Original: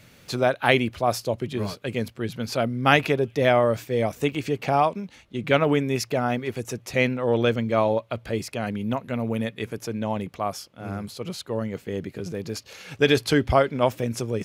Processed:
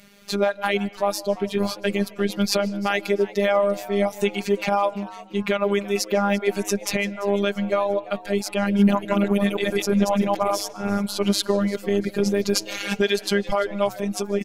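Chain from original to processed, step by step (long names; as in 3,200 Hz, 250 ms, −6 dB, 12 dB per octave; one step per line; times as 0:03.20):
0:08.66–0:10.68: delay that plays each chunk backwards 130 ms, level 0 dB
camcorder AGC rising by 7.5 dB per second
reverb reduction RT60 0.91 s
brickwall limiter −10.5 dBFS, peak gain reduction 8.5 dB
phases set to zero 201 Hz
echo with shifted repeats 342 ms, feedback 40%, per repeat +120 Hz, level −19 dB
convolution reverb RT60 0.50 s, pre-delay 115 ms, DRR 20 dB
level +3 dB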